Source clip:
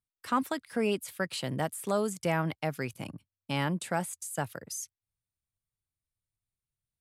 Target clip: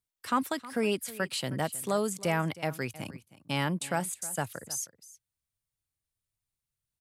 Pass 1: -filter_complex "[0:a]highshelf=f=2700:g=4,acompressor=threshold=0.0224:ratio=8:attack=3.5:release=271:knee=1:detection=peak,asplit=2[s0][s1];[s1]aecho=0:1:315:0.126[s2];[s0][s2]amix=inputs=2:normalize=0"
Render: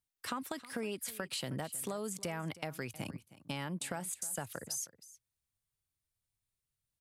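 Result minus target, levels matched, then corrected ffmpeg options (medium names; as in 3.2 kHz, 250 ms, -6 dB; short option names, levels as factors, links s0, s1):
compression: peak gain reduction +13.5 dB
-filter_complex "[0:a]highshelf=f=2700:g=4,asplit=2[s0][s1];[s1]aecho=0:1:315:0.126[s2];[s0][s2]amix=inputs=2:normalize=0"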